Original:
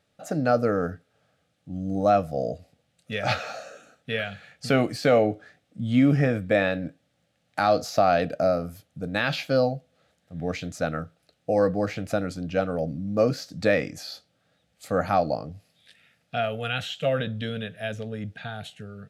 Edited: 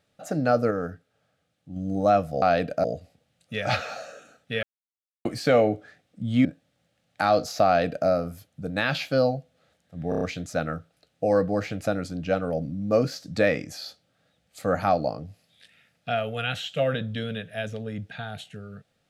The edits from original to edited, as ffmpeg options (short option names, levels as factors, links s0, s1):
-filter_complex "[0:a]asplit=12[s0][s1][s2][s3][s4][s5][s6][s7][s8][s9][s10][s11];[s0]atrim=end=0.712[s12];[s1]atrim=start=0.708:end=1.762,asetpts=PTS-STARTPTS,volume=0.668[s13];[s2]atrim=start=1.758:end=2.422[s14];[s3]atrim=start=8.038:end=8.462[s15];[s4]atrim=start=2.418:end=4.21,asetpts=PTS-STARTPTS,afade=t=out:st=1.788:d=0.004:c=hsin[s16];[s5]atrim=start=4.21:end=4.83,asetpts=PTS-STARTPTS,volume=0[s17];[s6]atrim=start=4.83:end=6.032,asetpts=PTS-STARTPTS,afade=t=in:d=0.004:c=hsin[s18];[s7]atrim=start=6.828:end=10.502[s19];[s8]atrim=start=10.468:end=10.502[s20];[s9]atrim=start=10.468:end=10.502[s21];[s10]atrim=start=10.468:end=10.502[s22];[s11]atrim=start=10.468[s23];[s12][s13]acrossfade=d=0.004:c1=hsin:c2=hsin[s24];[s24][s14]acrossfade=d=0.004:c1=hsin:c2=hsin[s25];[s25][s15]acrossfade=d=0.004:c1=hsin:c2=hsin[s26];[s16][s17][s18]concat=n=3:v=0:a=1[s27];[s26][s27]acrossfade=d=0.004:c1=hsin:c2=hsin[s28];[s28][s19]acrossfade=d=0.004:c1=hsin:c2=hsin[s29];[s29][s20]acrossfade=d=0.004:c1=hsin:c2=hsin[s30];[s30][s21]acrossfade=d=0.004:c1=hsin:c2=hsin[s31];[s31][s22]acrossfade=d=0.004:c1=hsin:c2=hsin[s32];[s32][s23]acrossfade=d=0.004:c1=hsin:c2=hsin"